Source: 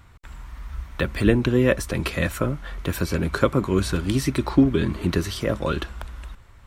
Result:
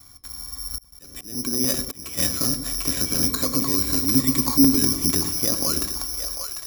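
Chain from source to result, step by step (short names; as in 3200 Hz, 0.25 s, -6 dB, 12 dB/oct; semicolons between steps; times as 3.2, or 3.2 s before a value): careless resampling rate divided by 8×, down filtered, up zero stuff; flange 0.55 Hz, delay 9.2 ms, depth 8.8 ms, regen -76%; limiter -1 dBFS, peak gain reduction 11 dB; split-band echo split 510 Hz, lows 92 ms, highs 0.746 s, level -8.5 dB; 0.75–2.19 auto swell 0.546 s; small resonant body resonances 270/740/1100/2300 Hz, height 11 dB, ringing for 45 ms; gate with hold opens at -32 dBFS; 3.26–4.81 ripple EQ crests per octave 1, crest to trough 7 dB; crackling interface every 0.10 s, samples 128, repeat, from 0.74; gain -2.5 dB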